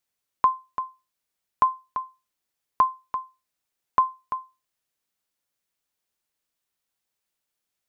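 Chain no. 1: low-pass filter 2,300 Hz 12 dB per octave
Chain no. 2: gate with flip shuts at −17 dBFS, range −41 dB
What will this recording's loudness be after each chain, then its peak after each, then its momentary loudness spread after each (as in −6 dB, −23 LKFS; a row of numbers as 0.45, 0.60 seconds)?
−27.5, −37.0 LKFS; −9.5, −10.5 dBFS; 10, 6 LU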